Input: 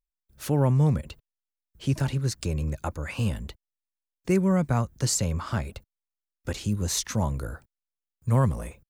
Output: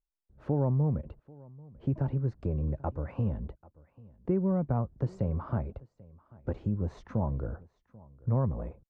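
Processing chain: Chebyshev low-pass 740 Hz, order 2; compression 2.5:1, threshold -26 dBFS, peak gain reduction 5.5 dB; on a send: delay 789 ms -23 dB

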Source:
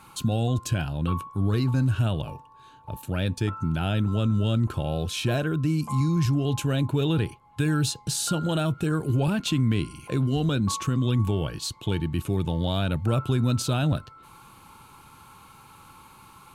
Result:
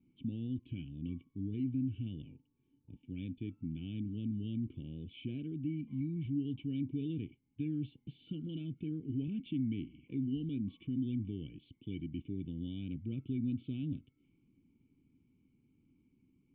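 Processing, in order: level-controlled noise filter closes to 1.1 kHz, open at -25 dBFS; cascade formant filter i; high-order bell 950 Hz -12.5 dB; trim -5.5 dB

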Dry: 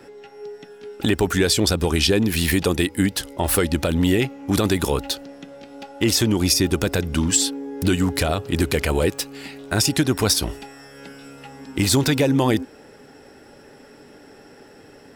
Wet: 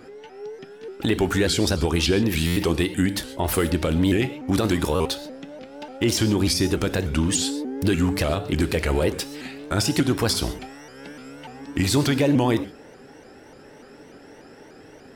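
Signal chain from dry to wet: in parallel at +0.5 dB: peak limiter -14.5 dBFS, peak gain reduction 8.5 dB; on the sum: treble shelf 5.4 kHz -5.5 dB; gated-style reverb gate 160 ms flat, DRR 11.5 dB; buffer glitch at 2.46/4.95 s, samples 512, times 8; vibrato with a chosen wave saw up 3.4 Hz, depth 160 cents; trim -6 dB

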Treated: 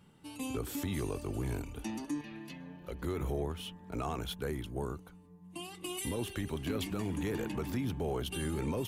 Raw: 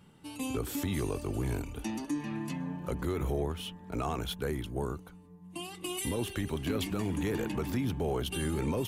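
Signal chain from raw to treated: 2.21–3.03 s: graphic EQ 125/250/1000/4000/8000 Hz -10/-6/-9/+4/-11 dB; trim -3 dB

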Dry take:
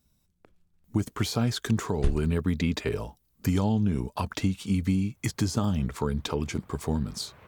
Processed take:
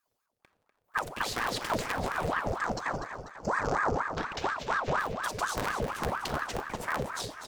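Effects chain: cycle switcher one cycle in 3, inverted; high-pass 120 Hz; 2.44–3.95 s: time-frequency box 1.2–4.7 kHz -16 dB; 2.28–4.99 s: steep low-pass 7.1 kHz 72 dB/octave; waveshaping leveller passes 1; feedback delay 246 ms, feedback 51%, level -9.5 dB; simulated room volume 2100 m³, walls furnished, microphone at 1.2 m; ring modulator with a swept carrier 860 Hz, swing 70%, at 4.2 Hz; trim -5 dB

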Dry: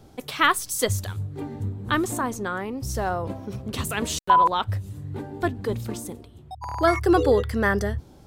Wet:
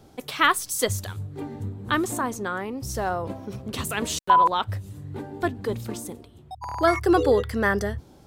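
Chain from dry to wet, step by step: bass shelf 110 Hz -6 dB

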